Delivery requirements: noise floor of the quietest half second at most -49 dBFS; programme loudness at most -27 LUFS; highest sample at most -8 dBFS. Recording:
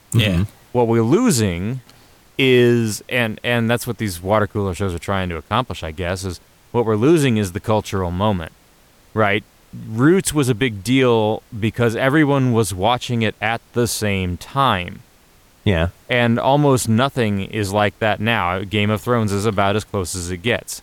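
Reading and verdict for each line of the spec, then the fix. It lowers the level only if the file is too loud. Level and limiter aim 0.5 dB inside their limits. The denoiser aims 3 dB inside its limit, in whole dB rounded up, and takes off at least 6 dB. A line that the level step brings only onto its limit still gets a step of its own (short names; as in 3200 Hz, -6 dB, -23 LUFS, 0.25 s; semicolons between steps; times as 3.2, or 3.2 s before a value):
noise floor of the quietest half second -52 dBFS: OK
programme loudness -18.5 LUFS: fail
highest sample -4.5 dBFS: fail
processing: gain -9 dB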